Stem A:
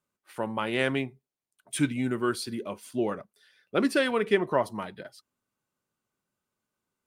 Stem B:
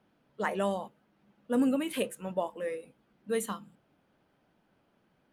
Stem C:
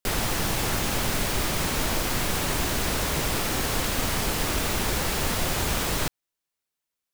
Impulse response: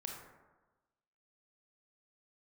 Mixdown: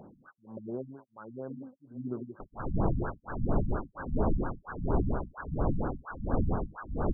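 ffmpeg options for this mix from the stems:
-filter_complex "[0:a]volume=-8dB,asplit=3[link_01][link_02][link_03];[link_02]volume=-7.5dB[link_04];[1:a]volume=-10.5dB[link_05];[2:a]adelay=2350,volume=2.5dB[link_06];[link_03]apad=whole_len=235009[link_07];[link_05][link_07]sidechaincompress=threshold=-47dB:ratio=8:attack=16:release=691[link_08];[link_04]aecho=0:1:592|1184|1776|2368|2960|3552:1|0.45|0.202|0.0911|0.041|0.0185[link_09];[link_01][link_08][link_06][link_09]amix=inputs=4:normalize=0,acompressor=mode=upward:threshold=-27dB:ratio=2.5,acrossover=split=1200[link_10][link_11];[link_10]aeval=exprs='val(0)*(1-1/2+1/2*cos(2*PI*1.4*n/s))':channel_layout=same[link_12];[link_11]aeval=exprs='val(0)*(1-1/2-1/2*cos(2*PI*1.4*n/s))':channel_layout=same[link_13];[link_12][link_13]amix=inputs=2:normalize=0,afftfilt=real='re*lt(b*sr/1024,240*pow(1700/240,0.5+0.5*sin(2*PI*4.3*pts/sr)))':imag='im*lt(b*sr/1024,240*pow(1700/240,0.5+0.5*sin(2*PI*4.3*pts/sr)))':win_size=1024:overlap=0.75"

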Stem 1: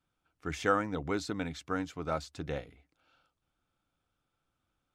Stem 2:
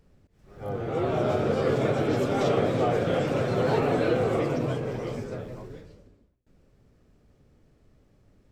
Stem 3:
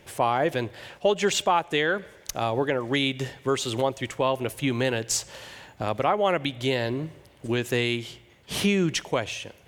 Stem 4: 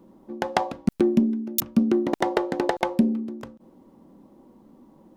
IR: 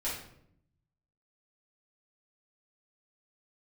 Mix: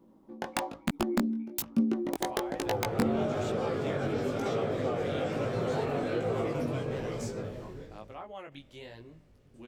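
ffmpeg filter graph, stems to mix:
-filter_complex "[0:a]asplit=3[link_01][link_02][link_03];[link_01]bandpass=frequency=300:width_type=q:width=8,volume=0dB[link_04];[link_02]bandpass=frequency=870:width_type=q:width=8,volume=-6dB[link_05];[link_03]bandpass=frequency=2240:width_type=q:width=8,volume=-9dB[link_06];[link_04][link_05][link_06]amix=inputs=3:normalize=0,volume=-9.5dB[link_07];[1:a]acompressor=threshold=-27dB:ratio=3,adelay=2050,volume=1dB[link_08];[2:a]adelay=2100,volume=-18dB[link_09];[3:a]aeval=exprs='(mod(2.82*val(0)+1,2)-1)/2.82':channel_layout=same,volume=-5dB[link_10];[link_07][link_08][link_09][link_10]amix=inputs=4:normalize=0,flanger=delay=17.5:depth=4.1:speed=1.1"

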